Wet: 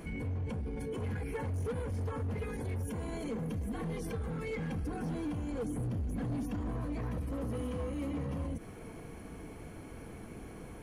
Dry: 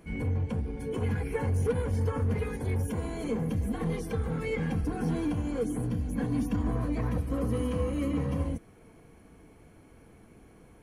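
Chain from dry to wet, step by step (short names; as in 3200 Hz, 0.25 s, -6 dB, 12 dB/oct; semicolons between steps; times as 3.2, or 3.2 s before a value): 5.52–6.36 bell 82 Hz +7.5 dB 1.7 oct; hard clip -25.5 dBFS, distortion -14 dB; limiter -39.5 dBFS, peak gain reduction 14 dB; gain +8 dB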